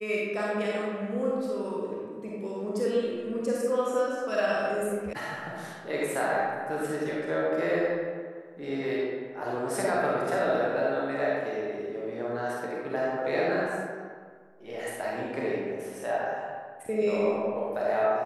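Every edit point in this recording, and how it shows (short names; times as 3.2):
5.13 sound cut off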